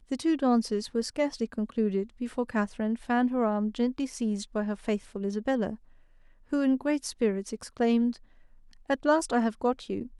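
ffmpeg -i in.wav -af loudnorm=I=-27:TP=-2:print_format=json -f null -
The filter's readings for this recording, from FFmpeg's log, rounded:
"input_i" : "-28.8",
"input_tp" : "-11.2",
"input_lra" : "1.0",
"input_thresh" : "-39.4",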